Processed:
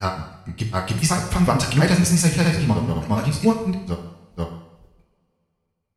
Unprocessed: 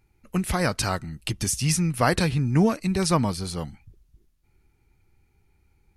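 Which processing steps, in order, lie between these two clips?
gate with hold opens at -51 dBFS; grains 0.118 s, grains 14/s, spray 0.992 s, pitch spread up and down by 0 st; added harmonics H 8 -40 dB, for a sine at -8.5 dBFS; two-slope reverb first 0.84 s, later 3.2 s, from -27 dB, DRR 1.5 dB; gain +4 dB

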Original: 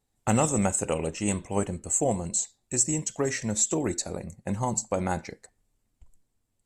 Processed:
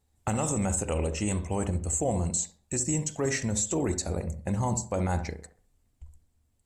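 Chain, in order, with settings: bell 75 Hz +14.5 dB 0.47 oct; limiter -20.5 dBFS, peak gain reduction 10.5 dB; dark delay 66 ms, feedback 33%, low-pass 1300 Hz, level -9 dB; gain +1.5 dB

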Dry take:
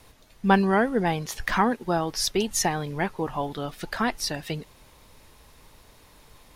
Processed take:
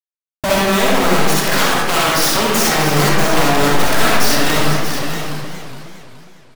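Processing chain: 1.34–2.04 Bessel high-pass 1100 Hz, order 2; spectral gate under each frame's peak -20 dB strong; compressor 12:1, threshold -35 dBFS, peak gain reduction 21.5 dB; soft clip -23.5 dBFS, distortion -27 dB; bit-crush 7-bit; wavefolder -38.5 dBFS; echo 0.637 s -9.5 dB; digital reverb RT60 1.2 s, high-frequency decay 0.55×, pre-delay 20 ms, DRR -5 dB; maximiser +27.5 dB; warbling echo 0.414 s, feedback 41%, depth 198 cents, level -9.5 dB; gain -2 dB

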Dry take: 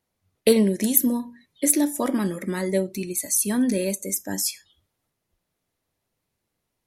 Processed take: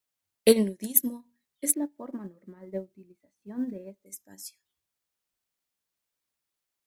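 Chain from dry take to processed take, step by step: 1.74–4.06 LPF 1200 Hz 12 dB/oct; requantised 10-bit, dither triangular; upward expander 2.5:1, over -30 dBFS

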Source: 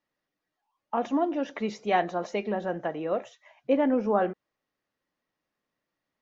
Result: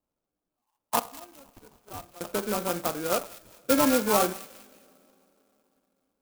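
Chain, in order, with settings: Wiener smoothing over 9 samples; 0.99–2.21 differentiator; two-slope reverb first 0.5 s, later 3.7 s, from -21 dB, DRR 11.5 dB; sample-and-hold 23×; on a send: thin delay 0.201 s, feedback 36%, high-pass 2700 Hz, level -10 dB; on the sum: dynamic EQ 1000 Hz, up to +6 dB, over -42 dBFS, Q 1.9; clock jitter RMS 0.087 ms

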